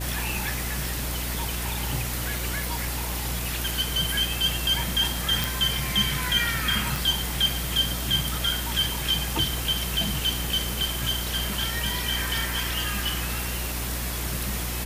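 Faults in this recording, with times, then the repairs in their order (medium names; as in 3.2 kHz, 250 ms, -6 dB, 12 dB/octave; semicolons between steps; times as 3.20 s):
hum 60 Hz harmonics 6 -32 dBFS
2.64 s: pop
5.44 s: pop
6.96 s: pop
10.69 s: pop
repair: de-click; de-hum 60 Hz, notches 6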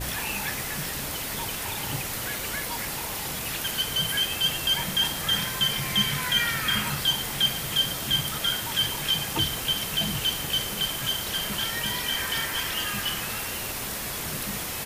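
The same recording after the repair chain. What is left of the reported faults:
nothing left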